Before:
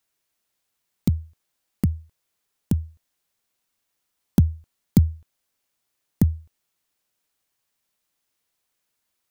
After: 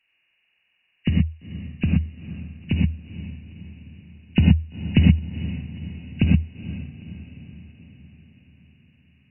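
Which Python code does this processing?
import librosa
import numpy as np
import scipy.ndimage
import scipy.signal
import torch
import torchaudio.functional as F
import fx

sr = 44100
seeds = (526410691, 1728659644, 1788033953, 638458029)

y = fx.freq_compress(x, sr, knee_hz=1500.0, ratio=4.0)
y = fx.echo_diffused(y, sr, ms=462, feedback_pct=57, wet_db=-13.5)
y = fx.rev_gated(y, sr, seeds[0], gate_ms=140, shape='rising', drr_db=-1.0)
y = y * 10.0 ** (-1.0 / 20.0)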